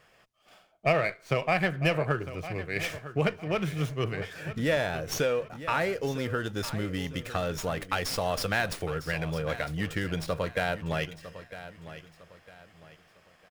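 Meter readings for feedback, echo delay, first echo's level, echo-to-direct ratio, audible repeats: 34%, 954 ms, -14.0 dB, -13.5 dB, 3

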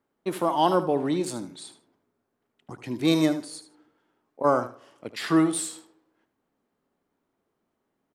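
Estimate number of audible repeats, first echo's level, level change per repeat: 2, -12.5 dB, -14.5 dB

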